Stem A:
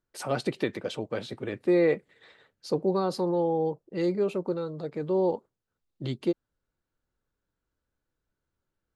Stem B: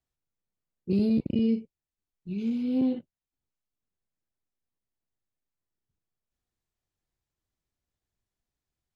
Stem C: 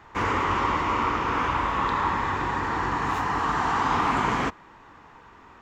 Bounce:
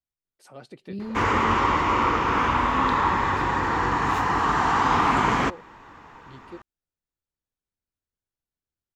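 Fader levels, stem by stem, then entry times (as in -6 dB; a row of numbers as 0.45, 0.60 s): -15.0, -9.0, +3.0 dB; 0.25, 0.00, 1.00 s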